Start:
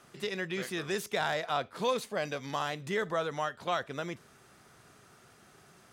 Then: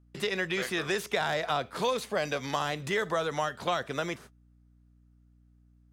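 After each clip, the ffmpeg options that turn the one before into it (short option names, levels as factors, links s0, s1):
-filter_complex "[0:a]agate=range=0.0141:threshold=0.00282:ratio=16:detection=peak,acrossover=split=410|3800[s0][s1][s2];[s0]acompressor=threshold=0.00562:ratio=4[s3];[s1]acompressor=threshold=0.0178:ratio=4[s4];[s2]acompressor=threshold=0.00355:ratio=4[s5];[s3][s4][s5]amix=inputs=3:normalize=0,aeval=exprs='val(0)+0.000447*(sin(2*PI*60*n/s)+sin(2*PI*2*60*n/s)/2+sin(2*PI*3*60*n/s)/3+sin(2*PI*4*60*n/s)/4+sin(2*PI*5*60*n/s)/5)':c=same,volume=2.37"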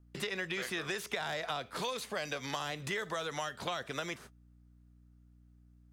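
-filter_complex "[0:a]acrossover=split=910|1900[s0][s1][s2];[s0]acompressor=threshold=0.01:ratio=4[s3];[s1]acompressor=threshold=0.00708:ratio=4[s4];[s2]acompressor=threshold=0.0112:ratio=4[s5];[s3][s4][s5]amix=inputs=3:normalize=0"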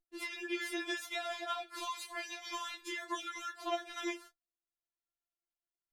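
-af "flanger=delay=15.5:depth=5.3:speed=2.5,agate=range=0.158:threshold=0.00141:ratio=16:detection=peak,afftfilt=real='re*4*eq(mod(b,16),0)':imag='im*4*eq(mod(b,16),0)':win_size=2048:overlap=0.75,volume=1.41"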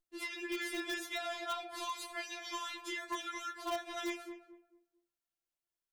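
-filter_complex "[0:a]bandreject=f=77.82:t=h:w=4,bandreject=f=155.64:t=h:w=4,bandreject=f=233.46:t=h:w=4,bandreject=f=311.28:t=h:w=4,bandreject=f=389.1:t=h:w=4,bandreject=f=466.92:t=h:w=4,bandreject=f=544.74:t=h:w=4,bandreject=f=622.56:t=h:w=4,bandreject=f=700.38:t=h:w=4,bandreject=f=778.2:t=h:w=4,bandreject=f=856.02:t=h:w=4,bandreject=f=933.84:t=h:w=4,bandreject=f=1011.66:t=h:w=4,bandreject=f=1089.48:t=h:w=4,bandreject=f=1167.3:t=h:w=4,bandreject=f=1245.12:t=h:w=4,bandreject=f=1322.94:t=h:w=4,bandreject=f=1400.76:t=h:w=4,bandreject=f=1478.58:t=h:w=4,bandreject=f=1556.4:t=h:w=4,bandreject=f=1634.22:t=h:w=4,bandreject=f=1712.04:t=h:w=4,bandreject=f=1789.86:t=h:w=4,bandreject=f=1867.68:t=h:w=4,bandreject=f=1945.5:t=h:w=4,bandreject=f=2023.32:t=h:w=4,bandreject=f=2101.14:t=h:w=4,bandreject=f=2178.96:t=h:w=4,bandreject=f=2256.78:t=h:w=4,bandreject=f=2334.6:t=h:w=4,bandreject=f=2412.42:t=h:w=4,bandreject=f=2490.24:t=h:w=4,bandreject=f=2568.06:t=h:w=4,asplit=2[s0][s1];[s1]aeval=exprs='(mod(31.6*val(0)+1,2)-1)/31.6':c=same,volume=0.355[s2];[s0][s2]amix=inputs=2:normalize=0,asplit=2[s3][s4];[s4]adelay=223,lowpass=f=860:p=1,volume=0.447,asplit=2[s5][s6];[s6]adelay=223,lowpass=f=860:p=1,volume=0.33,asplit=2[s7][s8];[s8]adelay=223,lowpass=f=860:p=1,volume=0.33,asplit=2[s9][s10];[s10]adelay=223,lowpass=f=860:p=1,volume=0.33[s11];[s3][s5][s7][s9][s11]amix=inputs=5:normalize=0,volume=0.75"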